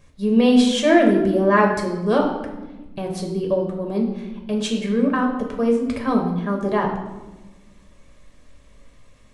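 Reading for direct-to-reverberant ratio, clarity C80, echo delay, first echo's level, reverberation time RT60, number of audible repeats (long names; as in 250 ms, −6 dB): 0.5 dB, 8.0 dB, no echo audible, no echo audible, 1.1 s, no echo audible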